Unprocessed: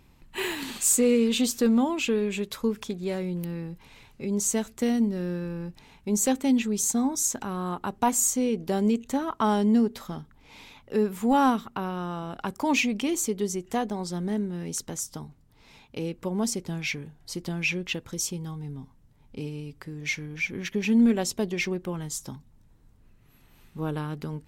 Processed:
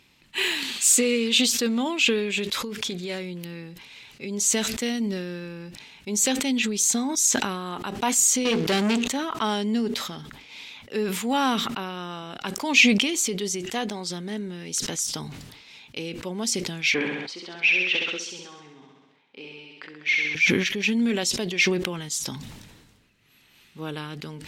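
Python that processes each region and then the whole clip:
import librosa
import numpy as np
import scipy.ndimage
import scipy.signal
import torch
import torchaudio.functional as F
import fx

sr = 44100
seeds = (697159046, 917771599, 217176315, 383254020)

y = fx.chain(x, sr, fx.over_compress(threshold_db=-30.0, ratio=-1.0),
    fx.notch(hz=2600.0, q=24.0), at=(2.62, 3.11))
y = fx.chain(y, sr, fx.hum_notches(base_hz=60, count=8),
    fx.leveller(passes=3), at=(8.45, 9.08))
y = fx.chain(y, sr, fx.bandpass_edges(low_hz=390.0, high_hz=2800.0),
    fx.room_flutter(wall_m=11.3, rt60_s=0.88), at=(16.94, 20.35))
y = fx.weighting(y, sr, curve='D')
y = fx.sustainer(y, sr, db_per_s=40.0)
y = y * 10.0 ** (-2.0 / 20.0)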